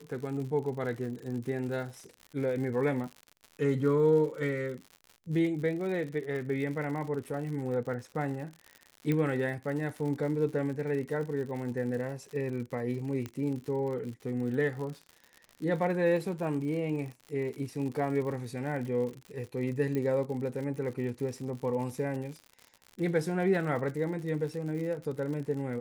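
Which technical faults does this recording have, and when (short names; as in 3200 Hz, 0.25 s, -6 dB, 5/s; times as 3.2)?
crackle 91/s -38 dBFS
9.12 pop -18 dBFS
13.26 pop -23 dBFS
19.95 pop -21 dBFS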